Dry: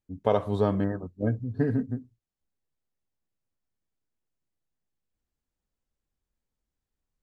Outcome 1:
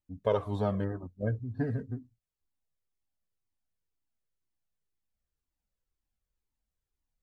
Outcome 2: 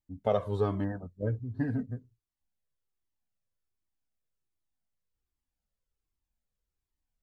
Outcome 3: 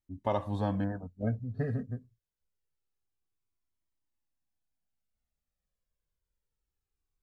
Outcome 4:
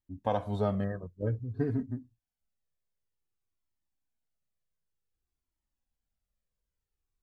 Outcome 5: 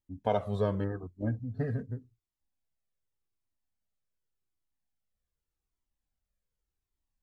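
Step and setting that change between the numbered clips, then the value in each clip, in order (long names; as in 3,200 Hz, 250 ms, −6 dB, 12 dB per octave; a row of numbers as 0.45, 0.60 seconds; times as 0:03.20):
flanger whose copies keep moving one way, speed: 2, 1.3, 0.26, 0.54, 0.86 Hertz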